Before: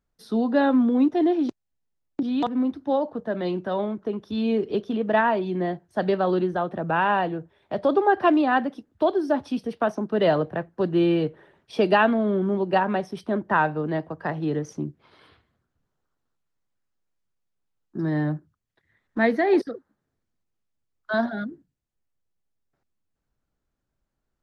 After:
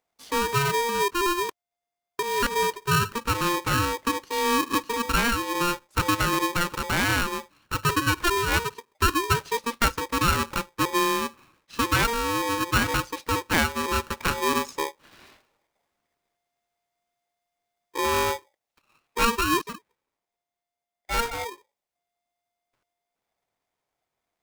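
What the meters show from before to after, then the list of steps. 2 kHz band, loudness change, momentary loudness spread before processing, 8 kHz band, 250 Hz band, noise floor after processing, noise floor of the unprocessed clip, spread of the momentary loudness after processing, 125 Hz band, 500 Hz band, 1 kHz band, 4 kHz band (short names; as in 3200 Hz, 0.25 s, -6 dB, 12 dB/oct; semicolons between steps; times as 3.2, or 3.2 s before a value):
+3.5 dB, -1.0 dB, 11 LU, n/a, -7.0 dB, under -85 dBFS, -80 dBFS, 8 LU, +1.5 dB, -6.0 dB, +1.0 dB, +11.0 dB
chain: low shelf 140 Hz -11.5 dB; vocal rider within 4 dB 0.5 s; polarity switched at an audio rate 700 Hz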